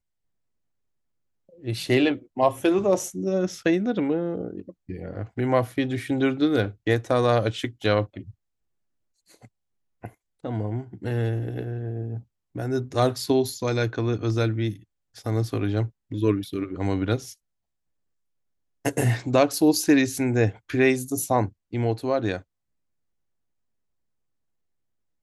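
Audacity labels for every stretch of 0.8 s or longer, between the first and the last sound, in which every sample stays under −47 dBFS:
8.310000	9.290000	silence
17.340000	18.850000	silence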